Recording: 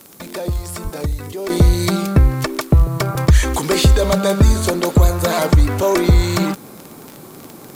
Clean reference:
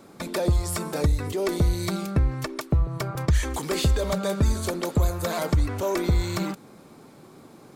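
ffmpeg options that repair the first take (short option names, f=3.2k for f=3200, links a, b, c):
-filter_complex "[0:a]adeclick=t=4,asplit=3[a][b][c];[a]afade=t=out:st=0.83:d=0.02[d];[b]highpass=f=140:w=0.5412,highpass=f=140:w=1.3066,afade=t=in:st=0.83:d=0.02,afade=t=out:st=0.95:d=0.02[e];[c]afade=t=in:st=0.95:d=0.02[f];[d][e][f]amix=inputs=3:normalize=0,agate=range=-21dB:threshold=-30dB,asetnsamples=n=441:p=0,asendcmd='1.5 volume volume -10dB',volume=0dB"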